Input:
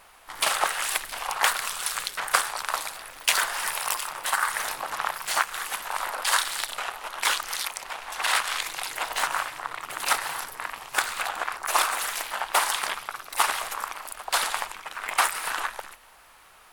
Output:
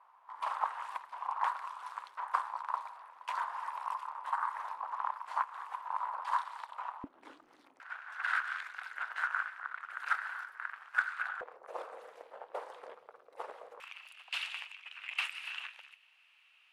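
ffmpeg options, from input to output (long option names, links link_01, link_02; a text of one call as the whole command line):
ffmpeg -i in.wav -af "asetnsamples=nb_out_samples=441:pad=0,asendcmd='7.04 bandpass f 280;7.8 bandpass f 1500;11.41 bandpass f 490;13.8 bandpass f 2700',bandpass=frequency=990:width_type=q:width=6.9:csg=0" out.wav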